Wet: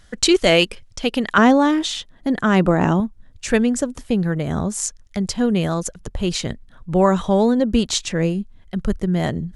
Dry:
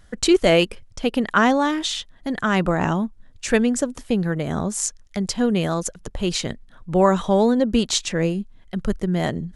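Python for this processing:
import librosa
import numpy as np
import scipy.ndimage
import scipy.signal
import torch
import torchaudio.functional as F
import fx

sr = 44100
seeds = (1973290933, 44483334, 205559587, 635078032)

y = fx.peak_eq(x, sr, hz=fx.steps((0.0, 4500.0), (1.38, 280.0), (3.0, 64.0)), db=6.0, octaves=2.6)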